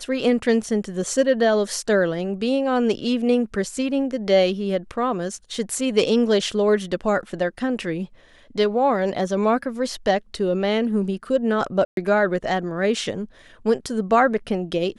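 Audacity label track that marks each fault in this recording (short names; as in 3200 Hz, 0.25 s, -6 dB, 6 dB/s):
11.850000	11.970000	gap 0.122 s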